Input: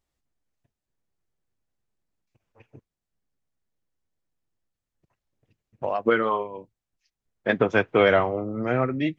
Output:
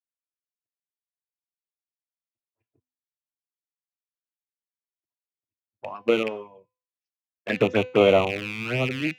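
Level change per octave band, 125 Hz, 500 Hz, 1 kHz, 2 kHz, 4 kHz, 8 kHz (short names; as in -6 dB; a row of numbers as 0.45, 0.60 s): +0.5 dB, +0.5 dB, -5.0 dB, -2.5 dB, +4.5 dB, n/a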